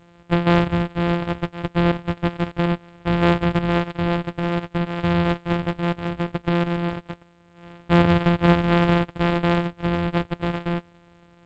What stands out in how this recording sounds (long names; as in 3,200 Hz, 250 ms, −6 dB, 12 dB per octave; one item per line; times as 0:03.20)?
a buzz of ramps at a fixed pitch in blocks of 256 samples
G.722